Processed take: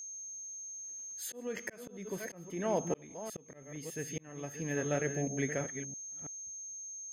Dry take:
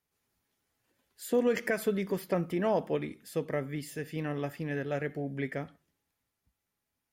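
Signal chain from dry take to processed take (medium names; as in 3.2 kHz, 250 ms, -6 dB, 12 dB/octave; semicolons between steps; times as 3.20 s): chunks repeated in reverse 330 ms, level -8.5 dB; whistle 6.4 kHz -42 dBFS; slow attack 644 ms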